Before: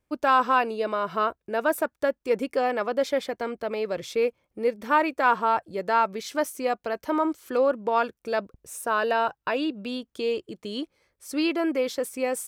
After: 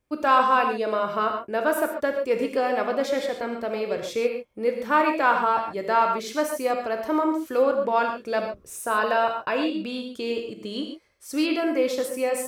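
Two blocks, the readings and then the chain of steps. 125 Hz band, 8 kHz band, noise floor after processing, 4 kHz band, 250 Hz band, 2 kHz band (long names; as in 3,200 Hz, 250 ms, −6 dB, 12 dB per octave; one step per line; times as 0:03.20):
can't be measured, +1.5 dB, −51 dBFS, +1.5 dB, +2.0 dB, +1.5 dB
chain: reverb whose tail is shaped and stops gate 160 ms flat, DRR 3 dB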